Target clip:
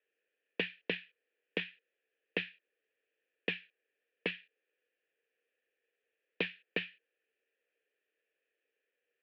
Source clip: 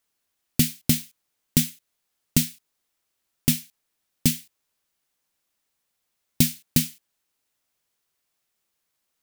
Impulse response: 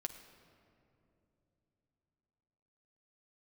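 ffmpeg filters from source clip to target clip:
-filter_complex "[0:a]asplit=3[s0][s1][s2];[s0]bandpass=f=530:t=q:w=8,volume=1[s3];[s1]bandpass=f=1840:t=q:w=8,volume=0.501[s4];[s2]bandpass=f=2480:t=q:w=8,volume=0.355[s5];[s3][s4][s5]amix=inputs=3:normalize=0,aeval=exprs='(tanh(28.2*val(0)+0.6)-tanh(0.6))/28.2':c=same,highpass=f=330:t=q:w=0.5412,highpass=f=330:t=q:w=1.307,lowpass=f=3300:t=q:w=0.5176,lowpass=f=3300:t=q:w=0.7071,lowpass=f=3300:t=q:w=1.932,afreqshift=-62,volume=5.01"

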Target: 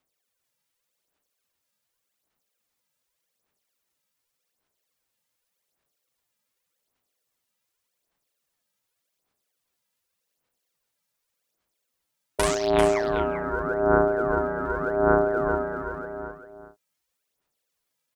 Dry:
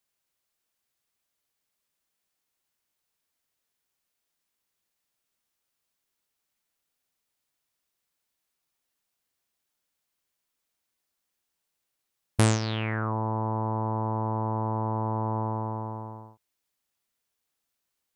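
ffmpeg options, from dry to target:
-af "aphaser=in_gain=1:out_gain=1:delay=2.8:decay=0.79:speed=0.86:type=sinusoidal,aecho=1:1:391:0.398,aeval=exprs='val(0)*sin(2*PI*510*n/s)':c=same"

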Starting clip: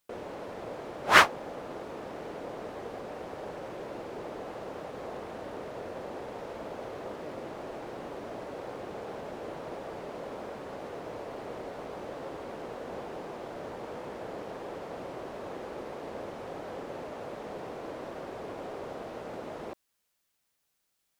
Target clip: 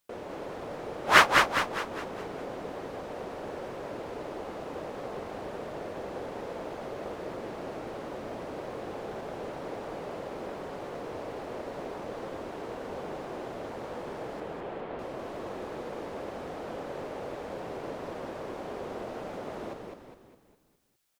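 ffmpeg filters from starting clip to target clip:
-filter_complex "[0:a]asettb=1/sr,asplit=3[s0][s1][s2];[s0]atrim=end=14.404[s3];[s1]atrim=start=14.4:end=14.99,asetpts=PTS-STARTPTS,afade=t=in:d=0.004:c=qsin,afade=t=out:st=0.586:d=0.004:c=qsin,lowpass=f=3500:w=0.5412,lowpass=f=3500:w=1.3066[s4];[s2]atrim=start=14.986[s5];[s3][s4]acrossfade=d=0.004:c1=hsin:c2=qsin[s6];[s6][s5]acrossfade=d=0.004:c1=qsin:c2=hsin,asplit=7[s7][s8][s9][s10][s11][s12][s13];[s8]adelay=204,afreqshift=-37,volume=0.631[s14];[s9]adelay=408,afreqshift=-74,volume=0.295[s15];[s10]adelay=612,afreqshift=-111,volume=0.14[s16];[s11]adelay=816,afreqshift=-148,volume=0.0653[s17];[s12]adelay=1020,afreqshift=-185,volume=0.0309[s18];[s13]adelay=1224,afreqshift=-222,volume=0.0145[s19];[s7][s14][s15][s16][s17][s18][s19]amix=inputs=7:normalize=0"

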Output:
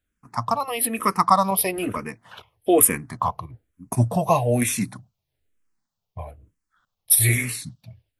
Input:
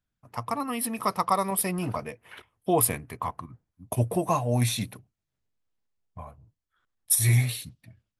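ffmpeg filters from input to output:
-filter_complex "[0:a]asplit=2[s0][s1];[s1]afreqshift=-1.1[s2];[s0][s2]amix=inputs=2:normalize=1,volume=2.66"

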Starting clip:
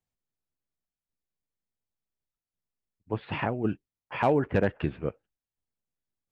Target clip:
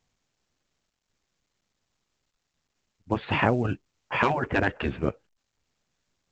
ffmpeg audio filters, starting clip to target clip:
-af "afftfilt=real='re*lt(hypot(re,im),0.251)':imag='im*lt(hypot(re,im),0.251)':win_size=1024:overlap=0.75,volume=2.51" -ar 16000 -c:a pcm_mulaw

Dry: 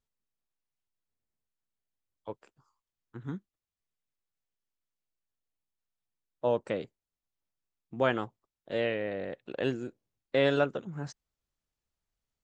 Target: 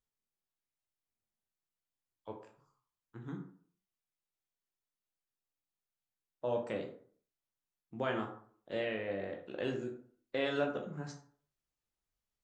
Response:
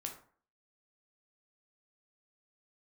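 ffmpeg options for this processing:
-filter_complex "[0:a]equalizer=f=68:w=0.38:g=-2.5,asplit=2[s0][s1];[s1]alimiter=limit=0.075:level=0:latency=1,volume=1.19[s2];[s0][s2]amix=inputs=2:normalize=0[s3];[1:a]atrim=start_sample=2205,asetrate=41454,aresample=44100[s4];[s3][s4]afir=irnorm=-1:irlink=0,volume=0.376"

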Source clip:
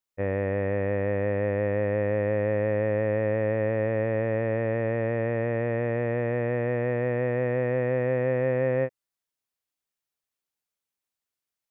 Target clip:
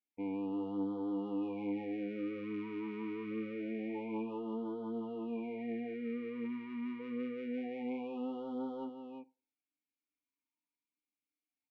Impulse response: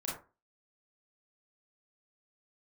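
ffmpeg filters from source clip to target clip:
-filter_complex "[0:a]bandreject=f=2000:w=13,aecho=1:1:4.2:0.81,asoftclip=type=tanh:threshold=0.0631,asplit=3[s0][s1][s2];[s0]bandpass=f=300:t=q:w=8,volume=1[s3];[s1]bandpass=f=870:t=q:w=8,volume=0.501[s4];[s2]bandpass=f=2240:t=q:w=8,volume=0.355[s5];[s3][s4][s5]amix=inputs=3:normalize=0,aeval=exprs='0.0188*(cos(1*acos(clip(val(0)/0.0188,-1,1)))-cos(1*PI/2))+0.000335*(cos(5*acos(clip(val(0)/0.0188,-1,1)))-cos(5*PI/2))':c=same,aecho=1:1:344:0.447,asplit=2[s6][s7];[1:a]atrim=start_sample=2205[s8];[s7][s8]afir=irnorm=-1:irlink=0,volume=0.0841[s9];[s6][s9]amix=inputs=2:normalize=0,afftfilt=real='re*(1-between(b*sr/1024,630*pow(2100/630,0.5+0.5*sin(2*PI*0.26*pts/sr))/1.41,630*pow(2100/630,0.5+0.5*sin(2*PI*0.26*pts/sr))*1.41))':imag='im*(1-between(b*sr/1024,630*pow(2100/630,0.5+0.5*sin(2*PI*0.26*pts/sr))/1.41,630*pow(2100/630,0.5+0.5*sin(2*PI*0.26*pts/sr))*1.41))':win_size=1024:overlap=0.75,volume=1.78"

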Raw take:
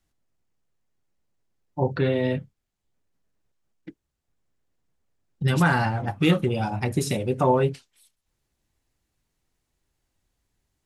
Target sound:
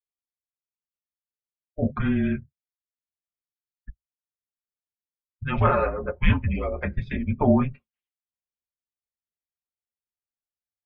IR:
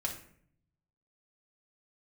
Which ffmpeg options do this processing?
-af "afftdn=nr=27:nf=-42,aecho=1:1:6:0.72,highpass=f=200:t=q:w=0.5412,highpass=f=200:t=q:w=1.307,lowpass=f=3100:t=q:w=0.5176,lowpass=f=3100:t=q:w=0.7071,lowpass=f=3100:t=q:w=1.932,afreqshift=-280"

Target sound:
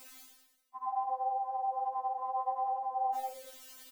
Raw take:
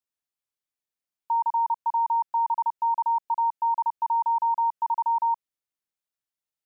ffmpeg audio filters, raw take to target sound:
-filter_complex "[0:a]equalizer=f=1100:w=2.5:g=-2.5,areverse,acompressor=mode=upward:threshold=0.0316:ratio=2.5,areverse,asplit=9[s0][s1][s2][s3][s4][s5][s6][s7][s8];[s1]adelay=97,afreqshift=-64,volume=0.299[s9];[s2]adelay=194,afreqshift=-128,volume=0.195[s10];[s3]adelay=291,afreqshift=-192,volume=0.126[s11];[s4]adelay=388,afreqshift=-256,volume=0.0822[s12];[s5]adelay=485,afreqshift=-320,volume=0.0531[s13];[s6]adelay=582,afreqshift=-384,volume=0.0347[s14];[s7]adelay=679,afreqshift=-448,volume=0.0224[s15];[s8]adelay=776,afreqshift=-512,volume=0.0146[s16];[s0][s9][s10][s11][s12][s13][s14][s15][s16]amix=inputs=9:normalize=0,atempo=1.7,afftfilt=real='re*3.46*eq(mod(b,12),0)':imag='im*3.46*eq(mod(b,12),0)':win_size=2048:overlap=0.75,volume=2.37"

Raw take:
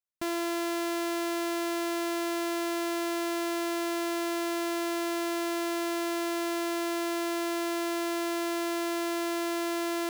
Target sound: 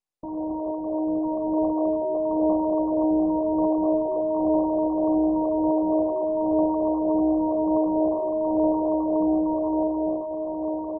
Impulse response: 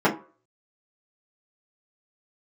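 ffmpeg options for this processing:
-filter_complex "[0:a]flanger=delay=16:depth=4.3:speed=0.53,dynaudnorm=f=110:g=21:m=2.11,aecho=1:1:250|425|547.5|633.2|693.3:0.631|0.398|0.251|0.158|0.1,acrossover=split=2600[s0][s1];[s1]acompressor=threshold=0.00398:ratio=4:attack=1:release=60[s2];[s0][s2]amix=inputs=2:normalize=0,asetrate=40517,aresample=44100,volume=1.5" -ar 24000 -c:a mp2 -b:a 8k

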